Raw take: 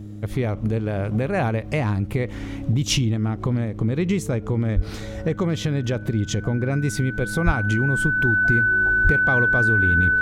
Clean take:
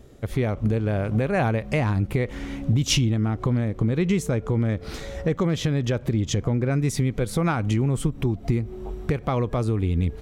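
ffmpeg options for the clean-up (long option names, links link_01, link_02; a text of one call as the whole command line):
ffmpeg -i in.wav -filter_complex "[0:a]bandreject=frequency=103.7:width_type=h:width=4,bandreject=frequency=207.4:width_type=h:width=4,bandreject=frequency=311.1:width_type=h:width=4,bandreject=frequency=1500:width=30,asplit=3[link_01][link_02][link_03];[link_01]afade=type=out:start_time=4.75:duration=0.02[link_04];[link_02]highpass=frequency=140:width=0.5412,highpass=frequency=140:width=1.3066,afade=type=in:start_time=4.75:duration=0.02,afade=type=out:start_time=4.87:duration=0.02[link_05];[link_03]afade=type=in:start_time=4.87:duration=0.02[link_06];[link_04][link_05][link_06]amix=inputs=3:normalize=0,asplit=3[link_07][link_08][link_09];[link_07]afade=type=out:start_time=7.45:duration=0.02[link_10];[link_08]highpass=frequency=140:width=0.5412,highpass=frequency=140:width=1.3066,afade=type=in:start_time=7.45:duration=0.02,afade=type=out:start_time=7.57:duration=0.02[link_11];[link_09]afade=type=in:start_time=7.57:duration=0.02[link_12];[link_10][link_11][link_12]amix=inputs=3:normalize=0,asplit=3[link_13][link_14][link_15];[link_13]afade=type=out:start_time=9.03:duration=0.02[link_16];[link_14]highpass=frequency=140:width=0.5412,highpass=frequency=140:width=1.3066,afade=type=in:start_time=9.03:duration=0.02,afade=type=out:start_time=9.15:duration=0.02[link_17];[link_15]afade=type=in:start_time=9.15:duration=0.02[link_18];[link_16][link_17][link_18]amix=inputs=3:normalize=0" out.wav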